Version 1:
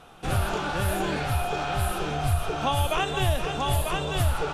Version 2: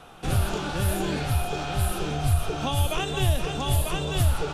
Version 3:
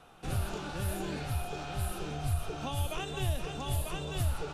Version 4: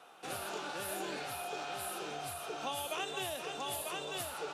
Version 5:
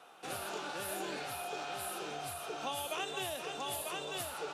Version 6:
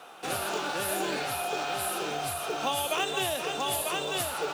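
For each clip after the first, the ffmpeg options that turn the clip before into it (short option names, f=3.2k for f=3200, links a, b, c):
-filter_complex "[0:a]acrossover=split=430|3000[a][b][c];[b]acompressor=threshold=-48dB:ratio=1.5[d];[a][d][c]amix=inputs=3:normalize=0,volume=2.5dB"
-af "bandreject=f=3.3k:w=21,volume=-9dB"
-af "highpass=410,volume=1dB"
-af anull
-af "acrusher=bits=6:mode=log:mix=0:aa=0.000001,volume=9dB"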